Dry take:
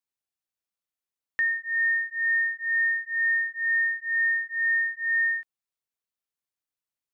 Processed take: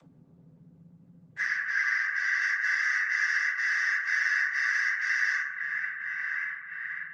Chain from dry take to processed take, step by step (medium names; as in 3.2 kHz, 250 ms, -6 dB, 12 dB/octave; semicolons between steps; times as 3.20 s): spectrum inverted on a logarithmic axis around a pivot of 1.8 kHz; dynamic bell 1.7 kHz, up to +8 dB, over -39 dBFS, Q 2.6; shuffle delay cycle 1123 ms, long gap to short 3:1, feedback 54%, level -20 dB; peak limiter -15.5 dBFS, peak gain reduction 4 dB; compression 2:1, threshold -35 dBFS, peak gain reduction 9.5 dB; frequency shift -33 Hz; Chebyshev shaper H 2 -22 dB, 5 -19 dB, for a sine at -22 dBFS; noise-vocoded speech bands 16; 1.45–2.42 s: distance through air 57 m; reverberation RT60 1.1 s, pre-delay 3 ms, DRR -4 dB; upward compressor, threshold -37 dBFS; trim -4 dB; Opus 20 kbps 48 kHz